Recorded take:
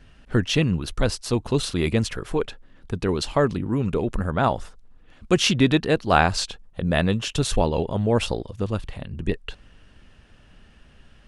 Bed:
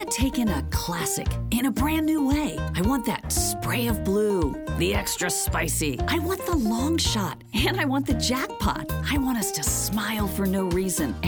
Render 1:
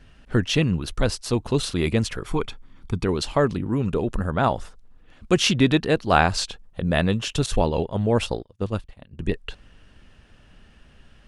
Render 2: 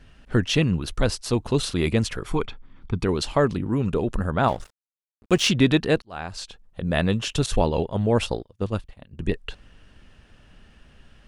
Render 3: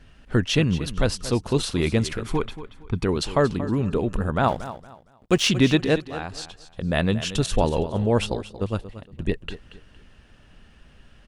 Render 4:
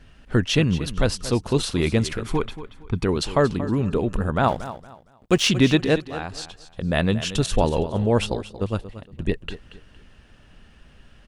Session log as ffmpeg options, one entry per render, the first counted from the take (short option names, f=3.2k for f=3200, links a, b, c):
-filter_complex "[0:a]asettb=1/sr,asplit=3[a][b][c];[a]atrim=end=2.264[d];[b]atrim=start=2.26:end=3.05,asetpts=PTS-STARTPTS,afade=t=in:d=0.004:c=qsin,afade=t=out:st=0.786:d=0.004:c=qsin,aecho=1:1:0.9:0.54,atrim=end_sample=34839[e];[c]atrim=start=3.046[f];[d][e]acrossfade=d=0.004:c1=hsin:c2=qsin[g];[g][f]acrossfade=d=0.004:c1=qsin:c2=hsin,asettb=1/sr,asplit=3[h][i][j];[h]atrim=end=3.854[k];[i]atrim=start=3.85:end=4.37,asetpts=PTS-STARTPTS,afade=t=in:d=0.004:c=qsin,afade=t=out:st=0.516:d=0.004:c=qsin,bandreject=f=2.2k:w=8[l];[j]atrim=start=4.366[m];[k][l]acrossfade=d=0.004:c1=hsin:c2=qsin[n];[n][m]acrossfade=d=0.004:c1=qsin:c2=hsin,asettb=1/sr,asplit=3[o][p][q];[o]atrim=end=7.464[r];[p]atrim=start=7.46:end=9.19,asetpts=PTS-STARTPTS,afade=t=in:d=0.004:c=qsin,afade=t=out:st=1.726:d=0.004:c=qsin,agate=range=-33dB:threshold=-25dB:ratio=3:release=100:detection=peak[s];[q]atrim=start=9.186[t];[r][s]acrossfade=d=0.004:c1=hsin:c2=qsin[u];[u][t]acrossfade=d=0.004:c1=qsin:c2=hsin"
-filter_complex "[0:a]asettb=1/sr,asplit=3[a][b][c];[a]atrim=end=2.464[d];[b]atrim=start=2.46:end=2.98,asetpts=PTS-STARTPTS,afade=t=in:d=0.004:c=qsin,afade=t=out:st=0.516:d=0.004:c=qsin,lowpass=3.7k[e];[c]atrim=start=2.976[f];[d][e]acrossfade=d=0.004:c1=hsin:c2=qsin[g];[g][f]acrossfade=d=0.004:c1=qsin:c2=hsin,asettb=1/sr,asplit=3[h][i][j];[h]atrim=end=4.484[k];[i]atrim=start=4.48:end=5.48,asetpts=PTS-STARTPTS,afade=t=in:d=0.004:c=qsin,afade=t=out:st=0.996:d=0.004:c=qsin,aeval=exprs='sgn(val(0))*max(abs(val(0))-0.0112,0)':c=same[l];[j]atrim=start=5.476[m];[k][l]acrossfade=d=0.004:c1=hsin:c2=qsin[n];[n][m]acrossfade=d=0.004:c1=qsin:c2=hsin,asplit=2[o][p];[o]atrim=end=6.02,asetpts=PTS-STARTPTS,afade=t=out:st=6.016:d=0.004:c=hsin[q];[p]atrim=start=6.02,asetpts=PTS-STARTPTS,afade=t=in:d=1.13[r];[q][r]concat=n=2:v=0:a=1"
-af "aecho=1:1:231|462|693:0.2|0.0539|0.0145"
-af "volume=1dB"